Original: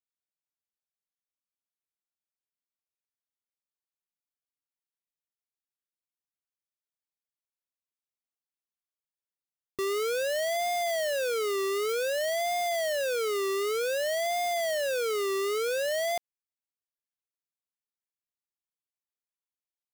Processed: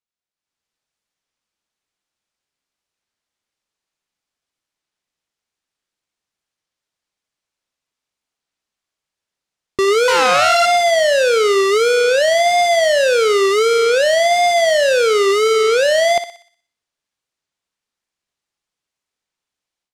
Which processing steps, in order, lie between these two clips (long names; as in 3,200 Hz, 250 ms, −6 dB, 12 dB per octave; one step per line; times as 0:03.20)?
0:10.09–0:10.66: samples sorted by size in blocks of 32 samples
low-pass filter 7,100 Hz 12 dB per octave
on a send: feedback echo with a high-pass in the loop 61 ms, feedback 48%, high-pass 590 Hz, level −10 dB
on the sum: automatic gain control gain up to 11.5 dB
wow of a warped record 33 1/3 rpm, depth 160 cents
level +3.5 dB